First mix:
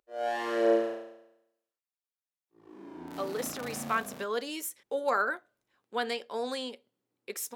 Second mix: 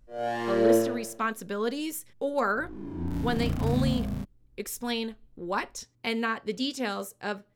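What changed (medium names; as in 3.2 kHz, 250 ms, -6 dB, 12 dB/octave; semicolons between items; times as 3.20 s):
speech: entry -2.70 s; master: remove high-pass 450 Hz 12 dB/octave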